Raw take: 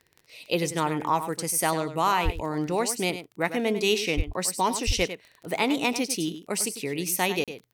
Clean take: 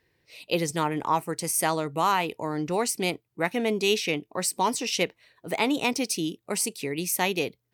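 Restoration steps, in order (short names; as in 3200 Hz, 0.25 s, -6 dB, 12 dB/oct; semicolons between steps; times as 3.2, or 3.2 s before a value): de-click; de-plosive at 2.24/4.16/4.86; interpolate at 7.44, 37 ms; inverse comb 99 ms -11 dB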